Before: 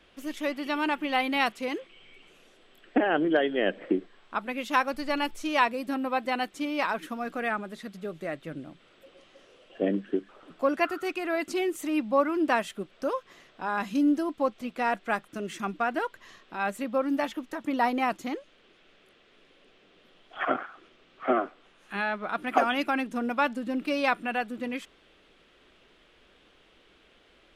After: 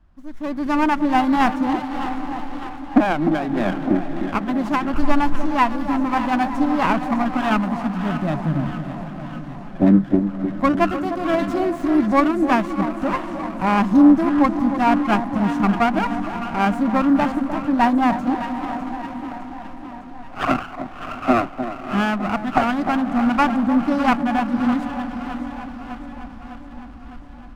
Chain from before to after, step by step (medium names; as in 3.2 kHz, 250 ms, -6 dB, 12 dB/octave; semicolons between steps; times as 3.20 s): static phaser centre 1.1 kHz, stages 4; 3.12–4.95 s: compression 6:1, threshold -31 dBFS, peak gain reduction 11 dB; echo that smears into a reverb 616 ms, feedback 41%, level -12.5 dB; level rider gain up to 16 dB; RIAA curve playback; on a send: echo whose repeats swap between lows and highs 303 ms, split 1 kHz, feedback 78%, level -9 dB; on the sum: sliding maximum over 9 samples; trim -3 dB